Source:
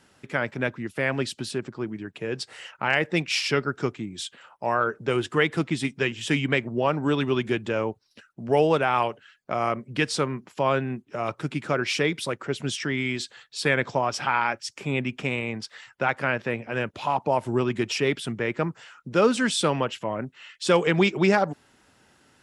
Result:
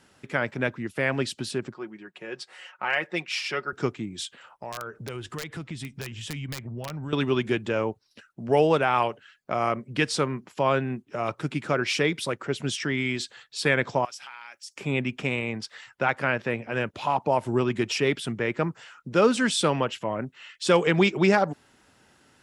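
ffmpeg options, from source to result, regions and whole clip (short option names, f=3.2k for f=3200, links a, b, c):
-filter_complex "[0:a]asettb=1/sr,asplit=3[a][b][c];[a]atrim=end=1.744[d];[b]atrim=start=1.74:end=3.73,asetpts=PTS-STARTPTS,afade=t=in:d=0.004:c=qsin,afade=t=out:st=1.986:d=0.004:c=qsin,highpass=f=840:p=1,highshelf=f=3k:g=-9,aecho=1:1:5.5:0.51,atrim=end_sample=87759[e];[c]atrim=start=3.726[f];[d][e]acrossfade=d=0.004:c1=hsin:c2=qsin[g];[g][f]acrossfade=d=0.004:c1=qsin:c2=hsin,asettb=1/sr,asplit=3[h][i][j];[h]atrim=end=4.254[k];[i]atrim=start=4.25:end=7.13,asetpts=PTS-STARTPTS,afade=t=in:d=0.004:c=qsin,afade=t=out:st=2.876:d=0.004:c=qsin,asubboost=boost=7.5:cutoff=140,acompressor=threshold=-35dB:ratio=3:attack=3.2:release=140:knee=1:detection=peak,aeval=exprs='(mod(16.8*val(0)+1,2)-1)/16.8':c=same[l];[j]atrim=start=7.126[m];[k][l]acrossfade=d=0.004:c1=hsin:c2=qsin[n];[n][m]acrossfade=d=0.004:c1=qsin:c2=hsin,asettb=1/sr,asplit=3[o][p][q];[o]atrim=end=14.054[r];[p]atrim=start=14.05:end=14.76,asetpts=PTS-STARTPTS,afade=t=in:d=0.004:c=qsin,afade=t=out:st=0.706:d=0.004:c=qsin,aderivative,acompressor=threshold=-37dB:ratio=5:attack=3.2:release=140:knee=1:detection=peak[s];[q]atrim=start=14.756[t];[r][s]acrossfade=d=0.004:c1=hsin:c2=qsin[u];[u][t]acrossfade=d=0.004:c1=qsin:c2=hsin"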